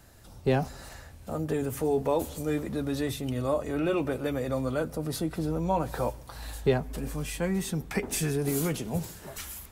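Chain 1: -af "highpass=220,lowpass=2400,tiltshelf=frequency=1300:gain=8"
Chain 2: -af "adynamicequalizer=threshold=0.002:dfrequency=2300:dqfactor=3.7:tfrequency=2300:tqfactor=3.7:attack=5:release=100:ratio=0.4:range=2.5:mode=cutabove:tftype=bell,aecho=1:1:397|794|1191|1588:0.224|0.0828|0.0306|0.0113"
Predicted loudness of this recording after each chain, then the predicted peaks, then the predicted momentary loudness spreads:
−26.0, −30.5 LKFS; −7.5, −12.0 dBFS; 10, 9 LU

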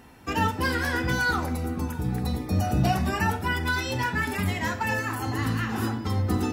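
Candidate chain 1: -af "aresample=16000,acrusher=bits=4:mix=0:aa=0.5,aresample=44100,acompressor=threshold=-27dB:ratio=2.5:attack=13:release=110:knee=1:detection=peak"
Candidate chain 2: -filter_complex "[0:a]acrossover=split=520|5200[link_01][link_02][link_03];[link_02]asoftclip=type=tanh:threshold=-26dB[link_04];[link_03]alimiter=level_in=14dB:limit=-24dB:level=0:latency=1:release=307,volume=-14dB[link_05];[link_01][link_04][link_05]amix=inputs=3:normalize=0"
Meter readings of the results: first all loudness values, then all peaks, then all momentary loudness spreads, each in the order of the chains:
−28.5, −28.0 LKFS; −16.0, −12.5 dBFS; 3, 4 LU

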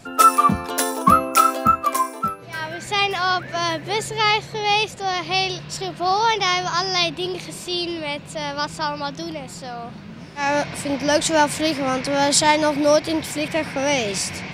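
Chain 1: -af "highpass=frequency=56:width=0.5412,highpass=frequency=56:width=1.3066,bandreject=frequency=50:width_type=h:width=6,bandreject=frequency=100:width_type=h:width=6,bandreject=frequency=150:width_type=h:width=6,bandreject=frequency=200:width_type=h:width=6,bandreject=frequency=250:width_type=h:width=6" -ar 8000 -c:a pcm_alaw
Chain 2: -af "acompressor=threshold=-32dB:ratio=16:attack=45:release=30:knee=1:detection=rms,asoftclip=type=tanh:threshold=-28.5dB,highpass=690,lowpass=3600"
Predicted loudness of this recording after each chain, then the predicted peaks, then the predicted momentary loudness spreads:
−21.0, −37.0 LKFS; −2.5, −25.5 dBFS; 13, 4 LU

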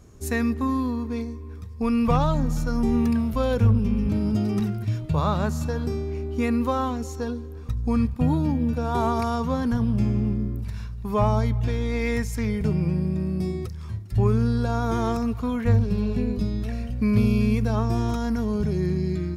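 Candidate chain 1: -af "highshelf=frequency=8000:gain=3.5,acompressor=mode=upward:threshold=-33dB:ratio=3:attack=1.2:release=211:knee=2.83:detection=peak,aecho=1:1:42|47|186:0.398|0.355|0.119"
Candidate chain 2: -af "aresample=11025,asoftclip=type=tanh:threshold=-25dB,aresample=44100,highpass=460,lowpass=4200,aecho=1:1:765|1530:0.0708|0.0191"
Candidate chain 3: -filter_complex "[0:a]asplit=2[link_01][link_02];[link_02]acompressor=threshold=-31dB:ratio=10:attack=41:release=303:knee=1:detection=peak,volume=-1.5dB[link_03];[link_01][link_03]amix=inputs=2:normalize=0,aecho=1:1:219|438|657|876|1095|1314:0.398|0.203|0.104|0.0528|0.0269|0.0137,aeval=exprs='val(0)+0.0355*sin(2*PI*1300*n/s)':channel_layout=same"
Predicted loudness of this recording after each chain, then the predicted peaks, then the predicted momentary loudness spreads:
−23.5, −37.5, −21.0 LKFS; −8.0, −20.5, −6.5 dBFS; 9, 10, 5 LU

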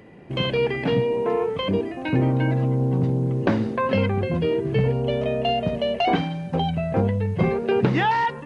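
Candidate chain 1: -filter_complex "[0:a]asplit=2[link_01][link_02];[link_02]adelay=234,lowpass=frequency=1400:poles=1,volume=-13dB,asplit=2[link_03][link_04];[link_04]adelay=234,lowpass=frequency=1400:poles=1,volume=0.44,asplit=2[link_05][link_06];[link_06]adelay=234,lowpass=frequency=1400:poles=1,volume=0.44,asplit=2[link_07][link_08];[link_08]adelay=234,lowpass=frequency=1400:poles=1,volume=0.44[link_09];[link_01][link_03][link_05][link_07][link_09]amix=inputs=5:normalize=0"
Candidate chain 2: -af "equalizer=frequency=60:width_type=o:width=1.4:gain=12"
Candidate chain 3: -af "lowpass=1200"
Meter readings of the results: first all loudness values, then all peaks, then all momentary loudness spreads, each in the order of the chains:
−23.0, −21.0, −23.5 LKFS; −4.5, −6.0, −5.5 dBFS; 4, 4, 4 LU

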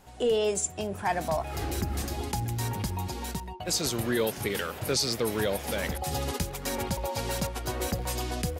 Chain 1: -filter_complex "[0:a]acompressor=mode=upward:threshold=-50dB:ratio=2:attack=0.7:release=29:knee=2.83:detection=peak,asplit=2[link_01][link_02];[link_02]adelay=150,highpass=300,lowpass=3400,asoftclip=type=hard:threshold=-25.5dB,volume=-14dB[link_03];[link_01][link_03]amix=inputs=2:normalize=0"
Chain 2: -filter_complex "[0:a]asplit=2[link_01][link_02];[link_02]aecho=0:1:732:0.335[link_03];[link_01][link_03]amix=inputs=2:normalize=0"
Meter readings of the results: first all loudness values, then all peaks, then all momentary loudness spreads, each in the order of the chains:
−30.0, −29.5 LKFS; −17.5, −16.0 dBFS; 6, 5 LU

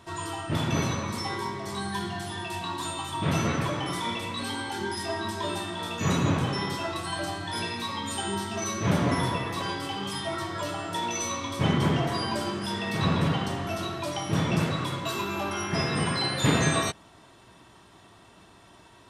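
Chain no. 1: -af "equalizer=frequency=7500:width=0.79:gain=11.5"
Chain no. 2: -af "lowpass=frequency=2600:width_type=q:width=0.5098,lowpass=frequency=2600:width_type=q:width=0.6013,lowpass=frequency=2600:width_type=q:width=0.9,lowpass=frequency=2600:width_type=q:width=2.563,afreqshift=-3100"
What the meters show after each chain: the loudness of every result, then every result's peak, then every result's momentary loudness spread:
−26.0, −26.5 LKFS; −7.0, −9.5 dBFS; 7, 10 LU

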